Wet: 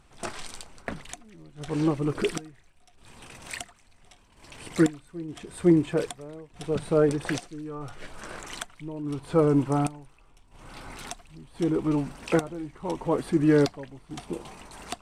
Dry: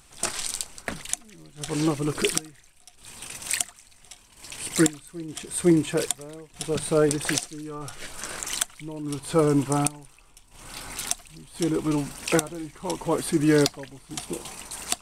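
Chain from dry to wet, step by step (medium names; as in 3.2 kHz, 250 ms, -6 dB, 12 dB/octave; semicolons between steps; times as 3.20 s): low-pass 1.4 kHz 6 dB/octave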